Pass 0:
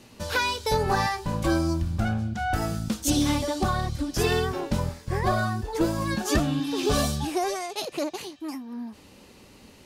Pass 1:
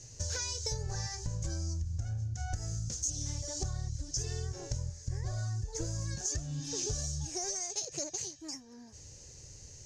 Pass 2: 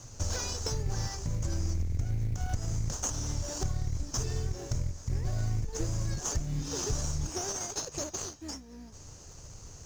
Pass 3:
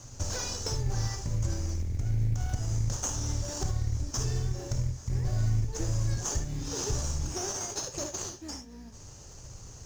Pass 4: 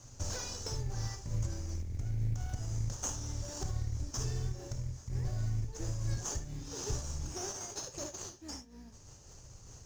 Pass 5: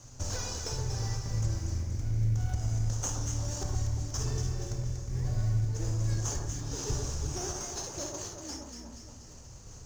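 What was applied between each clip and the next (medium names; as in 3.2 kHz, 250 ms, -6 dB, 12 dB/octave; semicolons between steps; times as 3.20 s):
FFT filter 140 Hz 0 dB, 210 Hz -25 dB, 300 Hz -18 dB, 490 Hz -12 dB, 1.2 kHz -23 dB, 1.7 kHz -13 dB, 2.6 kHz -18 dB, 3.7 kHz -15 dB, 6.5 kHz +10 dB, 11 kHz -24 dB; compression 12:1, threshold -37 dBFS, peak gain reduction 18.5 dB; trim +5 dB
octave divider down 2 oct, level -2 dB; in parallel at -6.5 dB: sample-rate reducer 2.2 kHz, jitter 20%
gated-style reverb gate 90 ms rising, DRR 6.5 dB
random flutter of the level, depth 55%; trim -3.5 dB
echo whose repeats swap between lows and highs 119 ms, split 1.4 kHz, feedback 74%, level -3.5 dB; trim +2.5 dB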